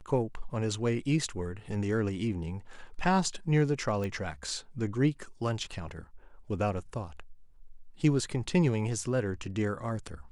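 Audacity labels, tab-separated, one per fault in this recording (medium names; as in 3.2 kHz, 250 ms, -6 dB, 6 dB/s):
4.040000	4.040000	pop -23 dBFS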